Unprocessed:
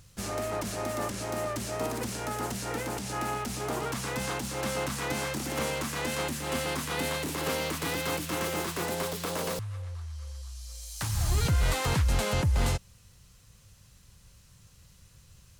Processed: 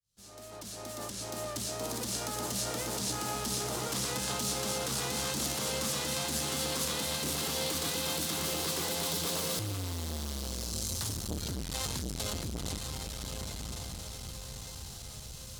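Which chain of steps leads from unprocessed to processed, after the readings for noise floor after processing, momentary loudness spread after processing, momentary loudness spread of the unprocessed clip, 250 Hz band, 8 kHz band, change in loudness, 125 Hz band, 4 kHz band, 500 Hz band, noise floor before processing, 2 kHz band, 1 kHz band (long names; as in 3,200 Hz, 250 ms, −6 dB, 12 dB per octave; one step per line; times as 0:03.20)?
−45 dBFS, 11 LU, 9 LU, −3.5 dB, +3.5 dB, −2.5 dB, −7.0 dB, +2.5 dB, −5.0 dB, −58 dBFS, −6.0 dB, −5.5 dB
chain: fade in at the beginning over 5.19 s
reversed playback
downward compressor, threshold −37 dBFS, peak gain reduction 14 dB
reversed playback
brickwall limiter −33 dBFS, peak gain reduction 5.5 dB
high shelf with overshoot 2,900 Hz +7 dB, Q 1.5
on a send: feedback delay with all-pass diffusion 1,108 ms, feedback 47%, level −4 dB
on the sum: saturating transformer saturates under 520 Hz
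level +5.5 dB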